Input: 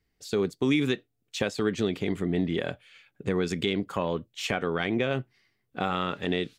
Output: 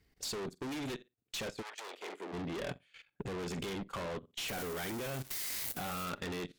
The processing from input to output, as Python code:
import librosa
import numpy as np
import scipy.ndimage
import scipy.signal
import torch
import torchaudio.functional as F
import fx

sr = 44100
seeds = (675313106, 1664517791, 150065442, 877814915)

y = fx.crossing_spikes(x, sr, level_db=-18.5, at=(4.48, 6.05))
y = fx.room_flutter(y, sr, wall_m=7.8, rt60_s=0.21)
y = fx.transient(y, sr, attack_db=0, sustain_db=-12)
y = fx.tube_stage(y, sr, drive_db=40.0, bias=0.35)
y = fx.level_steps(y, sr, step_db=16)
y = fx.highpass(y, sr, hz=fx.line((1.61, 820.0), (2.32, 280.0)), slope=24, at=(1.61, 2.32), fade=0.02)
y = F.gain(torch.from_numpy(y), 9.5).numpy()